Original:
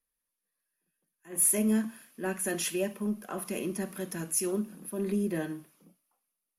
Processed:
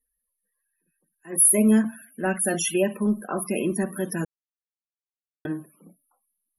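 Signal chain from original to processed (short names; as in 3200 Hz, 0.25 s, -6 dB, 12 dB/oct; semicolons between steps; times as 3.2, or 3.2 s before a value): 1.84–2.75 comb 1.4 ms, depth 31%; loudest bins only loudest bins 64; 4.25–5.45 mute; gain +8.5 dB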